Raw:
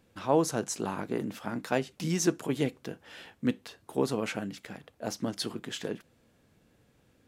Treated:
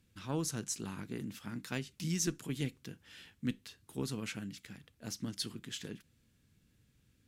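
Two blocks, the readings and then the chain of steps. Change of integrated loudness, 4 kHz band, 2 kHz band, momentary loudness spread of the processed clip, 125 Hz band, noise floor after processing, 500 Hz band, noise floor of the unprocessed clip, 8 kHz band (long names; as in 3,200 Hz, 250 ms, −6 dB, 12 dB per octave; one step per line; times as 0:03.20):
−7.5 dB, −3.5 dB, −7.0 dB, 15 LU, −3.0 dB, −72 dBFS, −14.5 dB, −67 dBFS, −2.5 dB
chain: harmonic generator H 2 −21 dB, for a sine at −11.5 dBFS
guitar amp tone stack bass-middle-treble 6-0-2
level +12 dB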